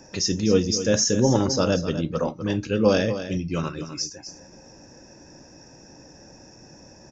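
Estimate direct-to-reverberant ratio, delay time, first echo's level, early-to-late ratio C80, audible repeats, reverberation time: no reverb, 252 ms, -11.0 dB, no reverb, 1, no reverb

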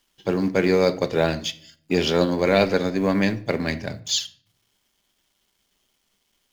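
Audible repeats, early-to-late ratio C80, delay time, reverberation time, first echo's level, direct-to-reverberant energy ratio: no echo, 21.0 dB, no echo, 0.55 s, no echo, 11.0 dB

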